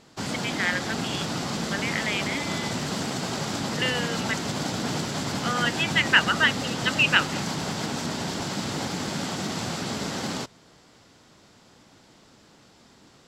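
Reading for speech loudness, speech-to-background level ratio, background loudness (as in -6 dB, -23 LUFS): -25.0 LUFS, 4.5 dB, -29.5 LUFS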